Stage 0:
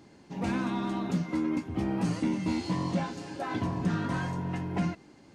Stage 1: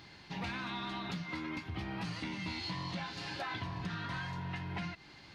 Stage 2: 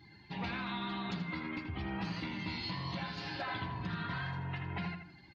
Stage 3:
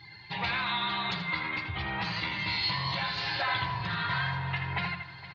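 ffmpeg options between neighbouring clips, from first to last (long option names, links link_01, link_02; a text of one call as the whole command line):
ffmpeg -i in.wav -af "equalizer=frequency=250:width_type=o:width=1:gain=-11,equalizer=frequency=500:width_type=o:width=1:gain=-8,equalizer=frequency=2000:width_type=o:width=1:gain=4,equalizer=frequency=4000:width_type=o:width=1:gain=10,equalizer=frequency=8000:width_type=o:width=1:gain=-11,acompressor=threshold=-41dB:ratio=6,volume=4dB" out.wav
ffmpeg -i in.wav -filter_complex "[0:a]afftdn=noise_reduction=17:noise_floor=-53,asplit=2[link_01][link_02];[link_02]adelay=81,lowpass=frequency=2700:poles=1,volume=-5.5dB,asplit=2[link_03][link_04];[link_04]adelay=81,lowpass=frequency=2700:poles=1,volume=0.39,asplit=2[link_05][link_06];[link_06]adelay=81,lowpass=frequency=2700:poles=1,volume=0.39,asplit=2[link_07][link_08];[link_08]adelay=81,lowpass=frequency=2700:poles=1,volume=0.39,asplit=2[link_09][link_10];[link_10]adelay=81,lowpass=frequency=2700:poles=1,volume=0.39[link_11];[link_03][link_05][link_07][link_09][link_11]amix=inputs=5:normalize=0[link_12];[link_01][link_12]amix=inputs=2:normalize=0" out.wav
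ffmpeg -i in.wav -af "equalizer=frequency=125:width_type=o:width=1:gain=8,equalizer=frequency=250:width_type=o:width=1:gain=-10,equalizer=frequency=500:width_type=o:width=1:gain=5,equalizer=frequency=1000:width_type=o:width=1:gain=7,equalizer=frequency=2000:width_type=o:width=1:gain=8,equalizer=frequency=4000:width_type=o:width=1:gain=11,aecho=1:1:463|926|1389|1852|2315:0.141|0.0819|0.0475|0.0276|0.016" out.wav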